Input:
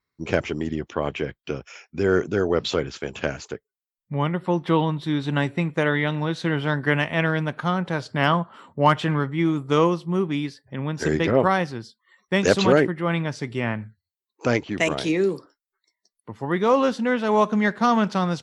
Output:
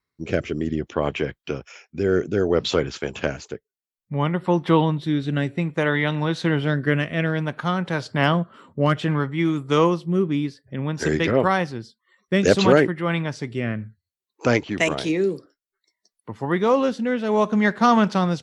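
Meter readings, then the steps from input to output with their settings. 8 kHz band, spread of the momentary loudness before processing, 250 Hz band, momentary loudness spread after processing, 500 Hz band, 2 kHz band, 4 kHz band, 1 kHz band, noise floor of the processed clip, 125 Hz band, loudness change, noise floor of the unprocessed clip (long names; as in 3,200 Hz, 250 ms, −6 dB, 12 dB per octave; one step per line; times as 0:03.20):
+0.5 dB, 11 LU, +1.5 dB, 11 LU, +1.0 dB, 0.0 dB, +1.0 dB, −0.5 dB, below −85 dBFS, +1.5 dB, +1.0 dB, below −85 dBFS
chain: rotating-speaker cabinet horn 0.6 Hz
level +3 dB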